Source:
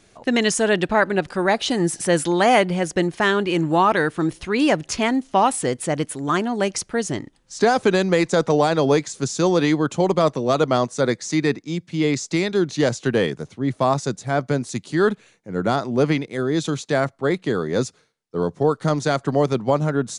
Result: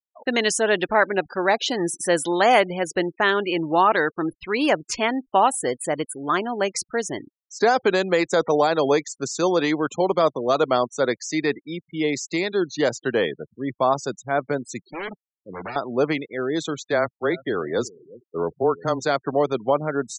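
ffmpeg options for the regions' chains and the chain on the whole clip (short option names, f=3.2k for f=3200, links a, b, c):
-filter_complex "[0:a]asettb=1/sr,asplit=3[a][b][c];[a]atrim=end=14.874[d];[b]atrim=start=14.87:end=15.76,asetpts=PTS-STARTPTS,afade=t=in:d=0.004:c=qsin,afade=t=out:st=0.886:d=0.004:c=qsin,acompressor=threshold=-23dB:ratio=2:attack=3.2:release=140:knee=1:detection=peak,aeval=exprs='0.0631*(abs(mod(val(0)/0.0631+3,4)-2)-1)':c=same[e];[c]atrim=start=15.756[f];[d][e]acrossfade=d=0.004:c1=hsin:c2=qsin[g];[g][f]acrossfade=d=0.004:c1=qsin:c2=hsin,asettb=1/sr,asplit=3[h][i][j];[h]atrim=end=16.844[k];[i]atrim=start=16.84:end=19,asetpts=PTS-STARTPTS,afade=t=in:d=0.004:c=qsin,afade=t=out:st=2.156:d=0.004:c=qsin,afreqshift=-16,aecho=1:1:359|718:0.1|0.027,atrim=end_sample=95256[l];[j]atrim=start=18.996[m];[k][l]acrossfade=d=0.004:c1=hsin:c2=qsin[n];[n][m]acrossfade=d=0.004:c1=qsin:c2=hsin,afftfilt=real='re*gte(hypot(re,im),0.0282)':imag='im*gte(hypot(re,im),0.0282)':win_size=1024:overlap=0.75,bass=f=250:g=-12,treble=f=4k:g=-1"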